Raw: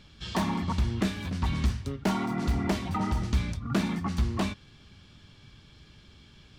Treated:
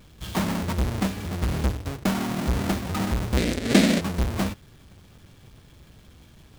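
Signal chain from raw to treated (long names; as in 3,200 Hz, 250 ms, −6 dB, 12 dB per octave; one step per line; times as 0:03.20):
each half-wave held at its own peak
0:03.37–0:04.01: graphic EQ with 10 bands 125 Hz −5 dB, 250 Hz +10 dB, 500 Hz +10 dB, 1,000 Hz −6 dB, 2,000 Hz +10 dB, 4,000 Hz +9 dB, 8,000 Hz +8 dB
level −2 dB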